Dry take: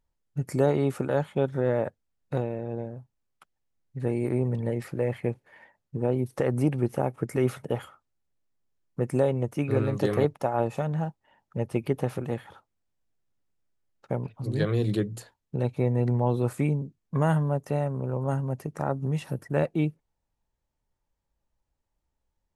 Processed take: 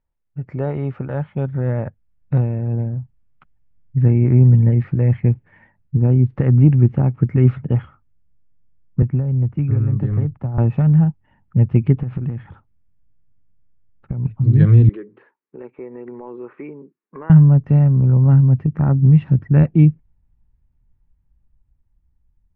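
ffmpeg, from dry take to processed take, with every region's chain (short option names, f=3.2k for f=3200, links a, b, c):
-filter_complex "[0:a]asettb=1/sr,asplit=3[a][b][c];[a]atrim=end=9.024[d];[b]atrim=start=9.02:end=10.58,asetpts=PTS-STARTPTS,afade=t=in:d=0.004:c=qsin,afade=t=out:st=1.556:d=0.004:c=qsin,lowpass=f=1.2k:p=1,acrossover=split=140|770[e][f][g];[e]acompressor=threshold=-36dB:ratio=4[h];[f]acompressor=threshold=-36dB:ratio=4[i];[g]acompressor=threshold=-46dB:ratio=4[j];[h][i][j]amix=inputs=3:normalize=0[k];[c]atrim=start=10.576[l];[d][k]acrossfade=d=0.004:c1=hsin:c2=qsin[m];[m][l]acrossfade=d=0.004:c1=qsin:c2=hsin,asettb=1/sr,asplit=3[n][o][p];[n]atrim=end=12.014[q];[o]atrim=start=12.01:end=14.25,asetpts=PTS-STARTPTS,afade=t=in:d=0.004:c=qsin,afade=t=out:st=2.236:d=0.004:c=qsin,lowpass=5.3k,acompressor=threshold=-32dB:ratio=16:attack=3.2:release=140:knee=1:detection=peak[r];[p]atrim=start=14.246[s];[q][r]acrossfade=d=0.004:c1=hsin:c2=qsin[t];[t][s]acrossfade=d=0.004:c1=qsin:c2=hsin,asettb=1/sr,asplit=3[u][v][w];[u]atrim=end=14.894[x];[v]atrim=start=14.89:end=17.3,asetpts=PTS-STARTPTS,afade=t=in:d=0.004:c=qsin,afade=t=out:st=2.406:d=0.004:c=qsin,highpass=f=380:w=0.5412,highpass=f=380:w=1.3066,equalizer=f=390:t=q:w=4:g=5,equalizer=f=690:t=q:w=4:g=-7,equalizer=f=1.1k:t=q:w=4:g=3,lowpass=f=2.5k:w=0.5412,lowpass=f=2.5k:w=1.3066,acompressor=threshold=-36dB:ratio=2:attack=3.2:release=140:knee=1:detection=peak[y];[w]atrim=start=17.296[z];[x][y]acrossfade=d=0.004:c1=hsin:c2=qsin[aa];[aa][z]acrossfade=d=0.004:c1=qsin:c2=hsin,lowpass=f=2.6k:w=0.5412,lowpass=f=2.6k:w=1.3066,asubboost=boost=10:cutoff=170,dynaudnorm=f=490:g=9:m=11.5dB,volume=-1dB"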